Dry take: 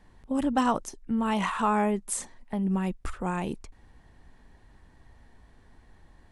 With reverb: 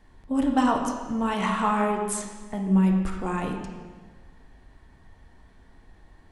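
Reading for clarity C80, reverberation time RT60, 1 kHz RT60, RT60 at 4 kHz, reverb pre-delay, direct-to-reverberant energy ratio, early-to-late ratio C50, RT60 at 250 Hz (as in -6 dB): 6.0 dB, 1.5 s, 1.4 s, 1.3 s, 3 ms, 1.0 dB, 4.5 dB, 1.6 s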